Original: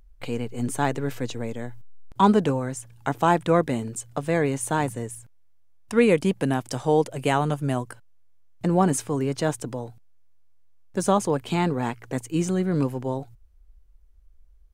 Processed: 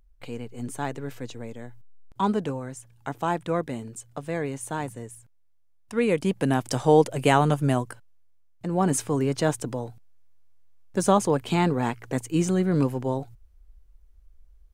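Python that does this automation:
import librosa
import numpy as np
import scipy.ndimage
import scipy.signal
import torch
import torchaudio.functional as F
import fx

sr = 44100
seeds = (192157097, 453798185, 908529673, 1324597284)

y = fx.gain(x, sr, db=fx.line((5.92, -6.5), (6.68, 3.0), (7.67, 3.0), (8.65, -7.5), (8.97, 1.0)))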